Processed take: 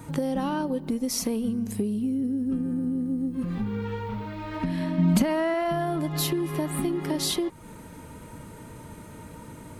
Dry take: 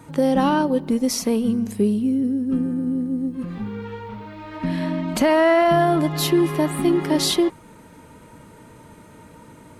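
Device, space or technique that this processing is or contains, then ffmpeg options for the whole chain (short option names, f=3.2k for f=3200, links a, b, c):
ASMR close-microphone chain: -filter_complex "[0:a]lowshelf=f=150:g=7,acompressor=threshold=-25dB:ratio=6,highshelf=f=8.2k:g=7,asettb=1/sr,asplit=3[a][b][c];[a]atrim=end=4.984[d];[b]atrim=start=4.98:end=5.54,asetpts=PTS-STARTPTS,afade=t=in:d=0.004:c=qsin,afade=t=out:st=0.556:d=0.004:c=qsin,equalizer=f=190:w=2.7:g=14.5[e];[c]atrim=start=5.536[f];[d][e]acrossfade=d=0.004:c1=hsin:c2=qsin[g];[g][f]acrossfade=d=0.004:c1=qsin:c2=hsin"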